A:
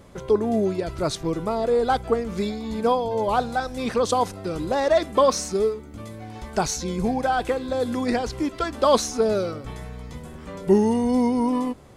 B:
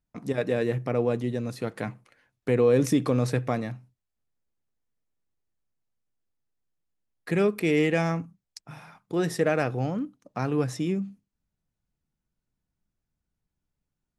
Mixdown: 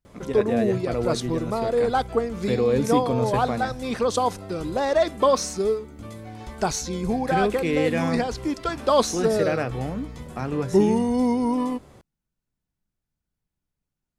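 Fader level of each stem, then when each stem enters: -1.0, -1.0 dB; 0.05, 0.00 s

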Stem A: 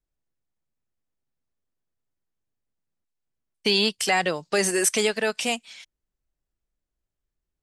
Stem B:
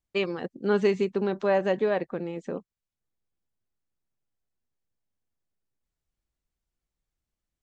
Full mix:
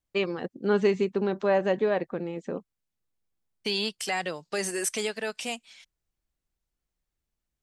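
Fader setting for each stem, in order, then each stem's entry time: -7.5, 0.0 dB; 0.00, 0.00 s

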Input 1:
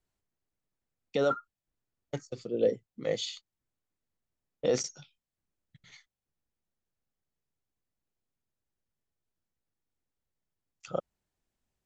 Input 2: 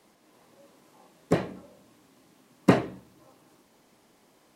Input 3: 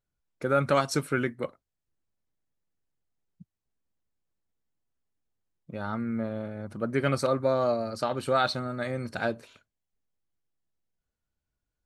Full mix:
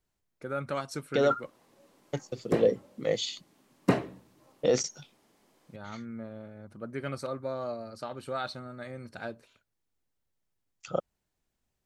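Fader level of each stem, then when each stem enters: +2.5, -5.0, -9.5 dB; 0.00, 1.20, 0.00 s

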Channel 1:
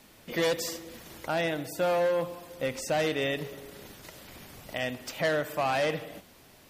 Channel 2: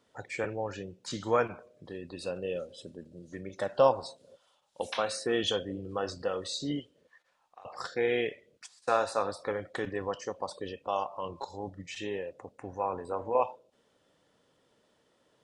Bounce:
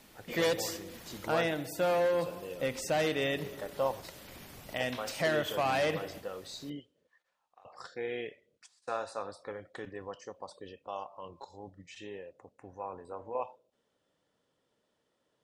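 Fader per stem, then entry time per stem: -2.0, -8.5 dB; 0.00, 0.00 s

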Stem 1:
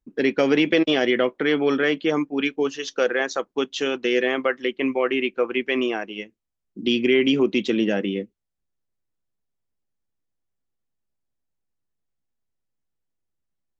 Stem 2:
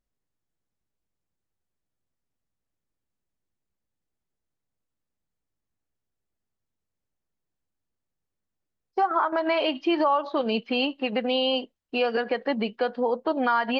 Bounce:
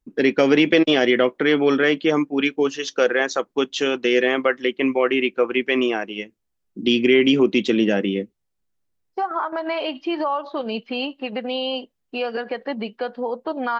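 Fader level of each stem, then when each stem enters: +3.0, -1.0 dB; 0.00, 0.20 s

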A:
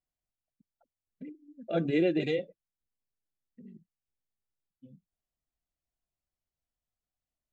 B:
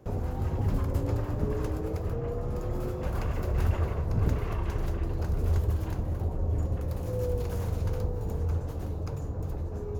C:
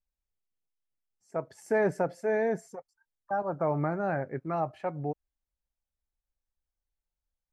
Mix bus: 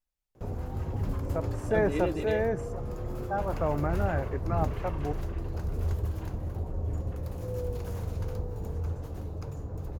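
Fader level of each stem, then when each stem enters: -5.5, -3.5, -1.0 dB; 0.00, 0.35, 0.00 s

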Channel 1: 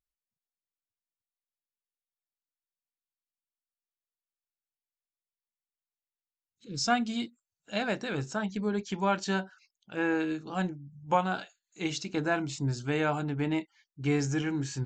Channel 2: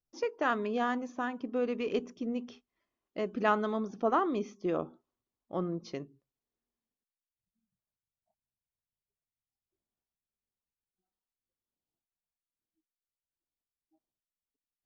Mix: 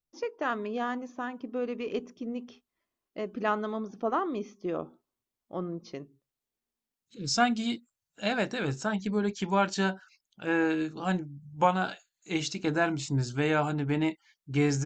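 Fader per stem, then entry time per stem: +2.0, -1.0 dB; 0.50, 0.00 s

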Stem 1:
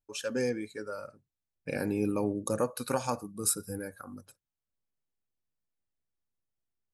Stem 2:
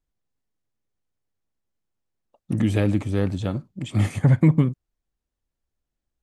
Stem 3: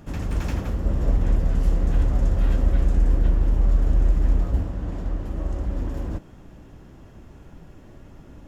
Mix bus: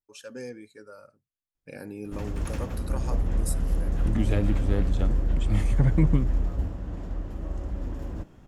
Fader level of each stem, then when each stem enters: -8.0, -6.0, -5.5 dB; 0.00, 1.55, 2.05 s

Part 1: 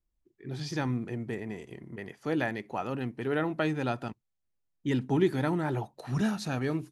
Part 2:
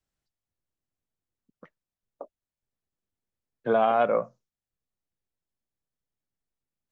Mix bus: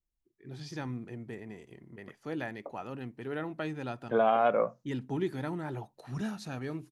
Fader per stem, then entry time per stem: -7.0, -3.0 dB; 0.00, 0.45 s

